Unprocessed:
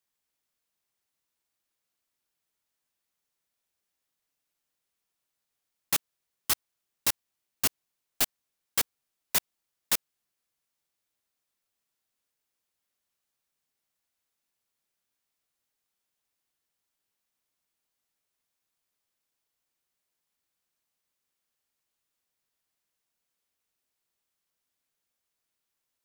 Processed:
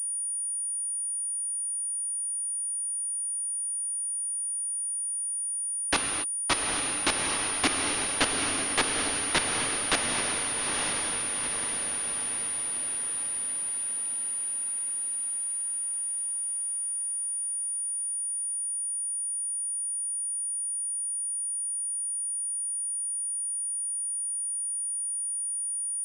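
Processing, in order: on a send: echo that smears into a reverb 872 ms, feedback 56%, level -3.5 dB; on the sum: level rider gain up to 8.5 dB; resonant low shelf 190 Hz -11.5 dB, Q 3; gated-style reverb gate 290 ms flat, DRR 3.5 dB; class-D stage that switches slowly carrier 9.5 kHz; trim -4 dB

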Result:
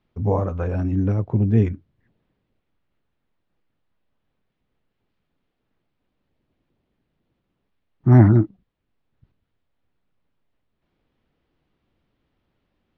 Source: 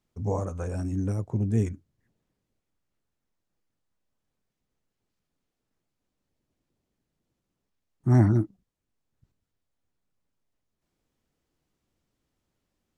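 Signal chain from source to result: low-pass 3.7 kHz 24 dB/octave; trim +7.5 dB

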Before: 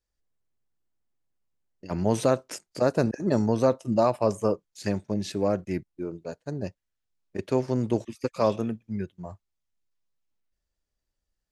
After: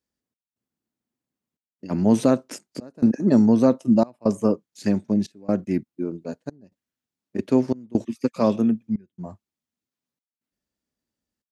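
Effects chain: high-pass 95 Hz; peaking EQ 240 Hz +12 dB 0.84 oct; trance gate "xxx..xxxxxx" 134 bpm -24 dB

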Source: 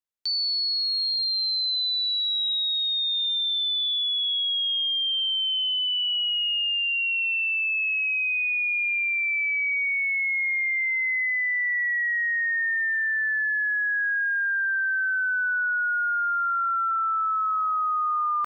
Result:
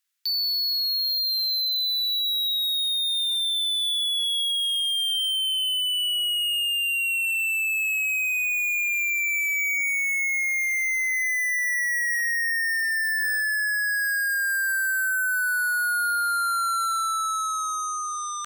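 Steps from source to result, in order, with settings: high-pass 1.4 kHz 24 dB/octave; in parallel at -11 dB: sine folder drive 18 dB, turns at -21.5 dBFS; on the sum: trim +1.5 dB

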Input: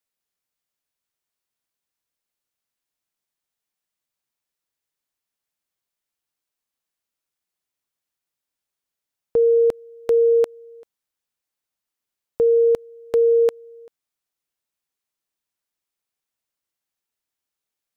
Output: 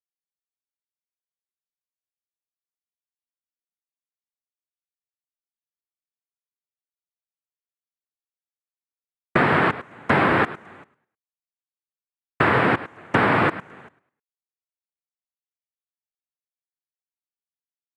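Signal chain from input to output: companding laws mixed up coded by A; feedback delay 104 ms, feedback 30%, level -18 dB; noise-vocoded speech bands 3; compression, threshold -19 dBFS, peak gain reduction 7.5 dB; trim +4 dB

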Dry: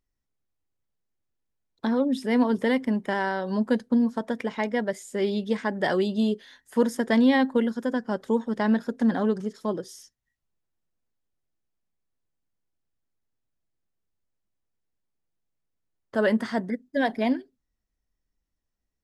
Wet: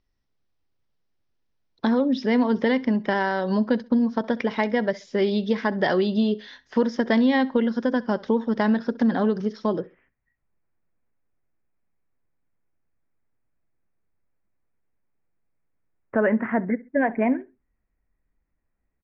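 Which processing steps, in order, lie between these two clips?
steep low-pass 5.9 kHz 72 dB/octave, from 9.79 s 2.5 kHz; compression 2.5:1, threshold -26 dBFS, peak gain reduction 7.5 dB; feedback delay 66 ms, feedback 27%, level -21.5 dB; trim +6.5 dB

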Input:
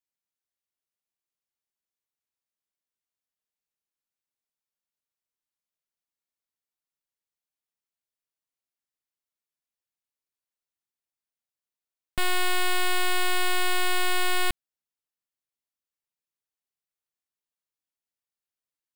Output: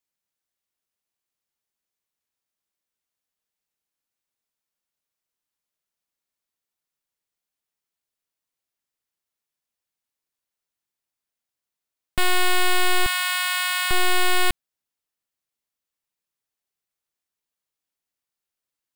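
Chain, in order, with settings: 13.06–13.91 s: high-pass 970 Hz 24 dB/octave; trim +5 dB

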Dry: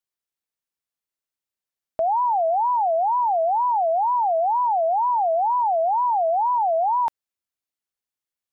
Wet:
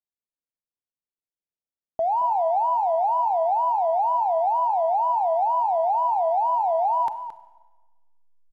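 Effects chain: level-controlled noise filter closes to 670 Hz, open at -23.5 dBFS; in parallel at -8.5 dB: hysteresis with a dead band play -36.5 dBFS; on the sum: echo from a far wall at 38 m, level -11 dB; Schroeder reverb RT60 1.2 s, combs from 31 ms, DRR 13.5 dB; trim -4.5 dB

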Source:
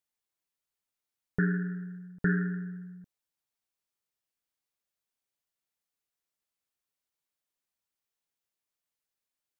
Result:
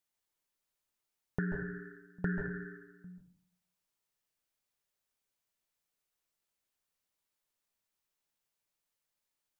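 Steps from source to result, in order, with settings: compression 10:1, threshold -32 dBFS, peak gain reduction 10 dB; on a send: reverberation RT60 0.45 s, pre-delay 136 ms, DRR 4.5 dB; on the sum: trim +1 dB

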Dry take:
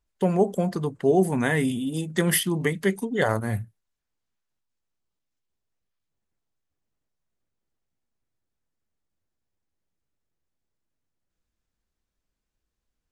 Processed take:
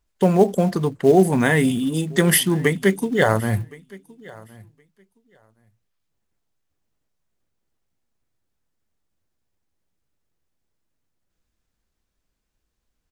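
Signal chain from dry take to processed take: in parallel at -7 dB: short-mantissa float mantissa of 2-bit; on the sum: feedback delay 1067 ms, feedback 15%, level -23 dB; trim +2.5 dB

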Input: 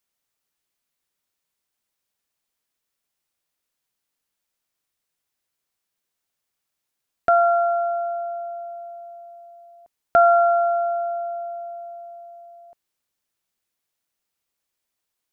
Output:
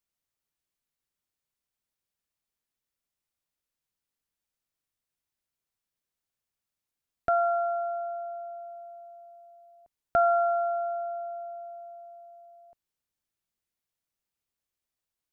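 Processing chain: bass shelf 180 Hz +9 dB; trim -8.5 dB

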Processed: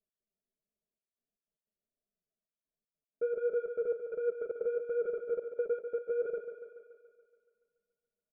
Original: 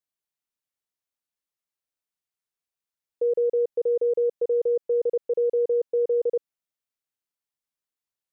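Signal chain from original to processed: elliptic low-pass 660 Hz; bass shelf 260 Hz +5.5 dB; comb 4.7 ms, depth 80%; in parallel at -2 dB: level held to a coarse grid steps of 22 dB; on the sum: peak limiter -25 dBFS, peak gain reduction 13.5 dB; saturation -26.5 dBFS, distortion -21 dB; flange 1.4 Hz, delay 4.1 ms, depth 6.8 ms, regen +26%; trance gate "x.xxxxxxxx..xx." 153 bpm -60 dB; on a send: thinning echo 142 ms, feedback 65%, high-pass 200 Hz, level -8 dB; on the sum: trim +3 dB

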